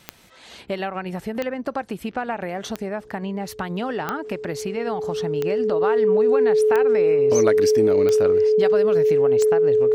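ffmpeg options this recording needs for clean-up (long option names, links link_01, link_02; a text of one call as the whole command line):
ffmpeg -i in.wav -af "adeclick=threshold=4,bandreject=frequency=430:width=30" out.wav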